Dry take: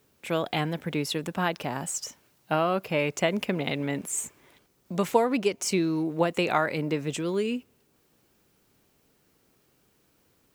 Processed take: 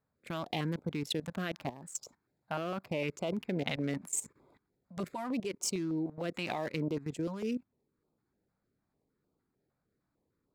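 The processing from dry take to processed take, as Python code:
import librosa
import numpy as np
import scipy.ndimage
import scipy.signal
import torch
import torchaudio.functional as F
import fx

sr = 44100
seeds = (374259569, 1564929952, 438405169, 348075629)

y = fx.wiener(x, sr, points=15)
y = fx.low_shelf(y, sr, hz=150.0, db=-2.5)
y = fx.level_steps(y, sr, step_db=16)
y = fx.filter_held_notch(y, sr, hz=6.6, low_hz=360.0, high_hz=1800.0)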